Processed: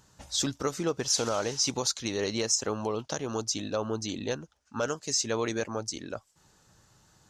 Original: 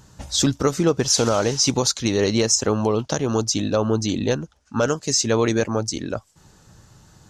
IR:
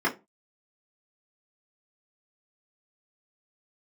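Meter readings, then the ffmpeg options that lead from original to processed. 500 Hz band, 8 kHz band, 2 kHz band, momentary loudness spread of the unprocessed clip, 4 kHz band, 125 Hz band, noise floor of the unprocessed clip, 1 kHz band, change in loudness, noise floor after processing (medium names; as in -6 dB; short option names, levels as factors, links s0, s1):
-10.0 dB, -7.5 dB, -8.0 dB, 7 LU, -7.5 dB, -14.0 dB, -57 dBFS, -8.5 dB, -9.0 dB, -67 dBFS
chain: -af "lowshelf=f=340:g=-7.5,volume=0.422"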